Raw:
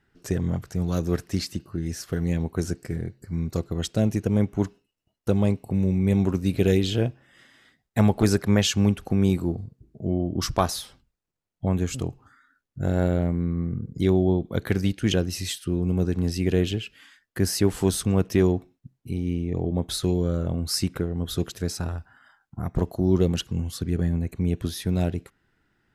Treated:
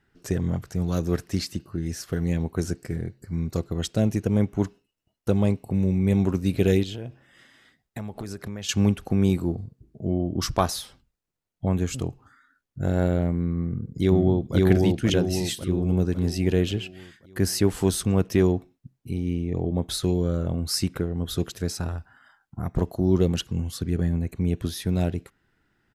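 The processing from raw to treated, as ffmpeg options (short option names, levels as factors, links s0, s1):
-filter_complex "[0:a]asettb=1/sr,asplit=3[s0][s1][s2];[s0]atrim=end=6.834[s3];[s1]atrim=start=6.83:end=8.69,asetpts=PTS-STARTPTS,afade=t=in:d=0.004:c=qsin,afade=t=out:st=1.856:d=0.004:c=qsin,acompressor=threshold=0.0316:ratio=12:attack=3.2:release=140:knee=1:detection=peak[s4];[s2]atrim=start=8.686[s5];[s3][s4]acrossfade=d=0.004:c1=hsin:c2=qsin[s6];[s6][s5]acrossfade=d=0.004:c1=qsin:c2=hsin,asplit=2[s7][s8];[s8]afade=t=in:st=13.57:d=0.01,afade=t=out:st=14.55:d=0.01,aecho=0:1:540|1080|1620|2160|2700|3240|3780:1|0.5|0.25|0.125|0.0625|0.03125|0.015625[s9];[s7][s9]amix=inputs=2:normalize=0"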